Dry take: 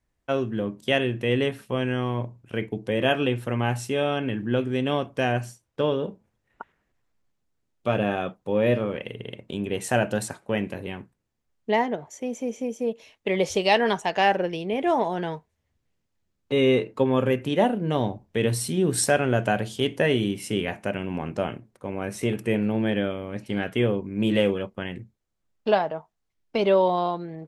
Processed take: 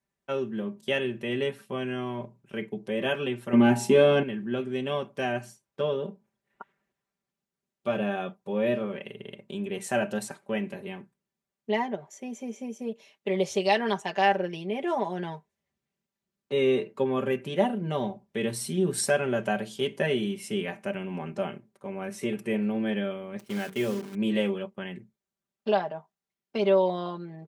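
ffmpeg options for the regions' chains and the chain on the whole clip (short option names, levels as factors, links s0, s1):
-filter_complex "[0:a]asettb=1/sr,asplit=3[s0][s1][s2];[s0]atrim=end=3.534[s3];[s1]atrim=start=3.53:end=4.23,asetpts=PTS-STARTPTS,afade=t=in:d=0.004:c=qsin,afade=t=out:st=0.696:d=0.004:c=qsin,equalizer=f=260:w=1:g=11,bandreject=f=55.47:t=h:w=4,bandreject=f=110.94:t=h:w=4,bandreject=f=166.41:t=h:w=4,bandreject=f=221.88:t=h:w=4,bandreject=f=277.35:t=h:w=4,bandreject=f=332.82:t=h:w=4,bandreject=f=388.29:t=h:w=4,bandreject=f=443.76:t=h:w=4,bandreject=f=499.23:t=h:w=4,bandreject=f=554.7:t=h:w=4,bandreject=f=610.17:t=h:w=4,bandreject=f=665.64:t=h:w=4,bandreject=f=721.11:t=h:w=4,bandreject=f=776.58:t=h:w=4,bandreject=f=832.05:t=h:w=4,bandreject=f=887.52:t=h:w=4,bandreject=f=942.99:t=h:w=4,bandreject=f=998.46:t=h:w=4,acontrast=66[s4];[s2]atrim=start=4.226[s5];[s3][s4]acrossfade=d=0.004:c1=hsin:c2=qsin[s6];[s6][s5]acrossfade=d=0.004:c1=qsin:c2=hsin,asettb=1/sr,asplit=3[s7][s8][s9];[s7]atrim=end=23.394[s10];[s8]atrim=start=23.39:end=24.15,asetpts=PTS-STARTPTS,afade=t=in:d=0.004:c=qsin,afade=t=out:st=0.756:d=0.004:c=qsin,acrusher=bits=7:dc=4:mix=0:aa=0.000001,bandreject=f=47.65:t=h:w=4,bandreject=f=95.3:t=h:w=4,bandreject=f=142.95:t=h:w=4,bandreject=f=190.6:t=h:w=4,bandreject=f=238.25:t=h:w=4,bandreject=f=285.9:t=h:w=4,bandreject=f=333.55:t=h:w=4,bandreject=f=381.2:t=h:w=4,bandreject=f=428.85:t=h:w=4,bandreject=f=476.5:t=h:w=4[s11];[s9]atrim=start=24.146[s12];[s10][s11]acrossfade=d=0.004:c1=hsin:c2=qsin[s13];[s13][s12]acrossfade=d=0.004:c1=qsin:c2=hsin,highpass=110,aecho=1:1:5.1:0.74,volume=0.473"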